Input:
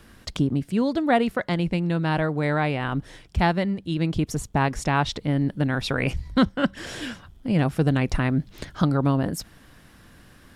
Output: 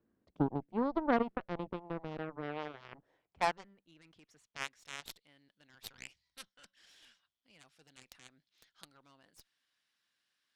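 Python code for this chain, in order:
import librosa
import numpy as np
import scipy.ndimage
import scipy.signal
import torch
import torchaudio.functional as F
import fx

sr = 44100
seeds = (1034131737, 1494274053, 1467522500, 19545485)

y = fx.filter_sweep_bandpass(x, sr, from_hz=330.0, to_hz=4100.0, start_s=2.39, end_s=5.03, q=1.1)
y = fx.cheby_harmonics(y, sr, harmonics=(4, 5, 7), levels_db=(-20, -37, -15), full_scale_db=-10.5)
y = y * librosa.db_to_amplitude(-5.5)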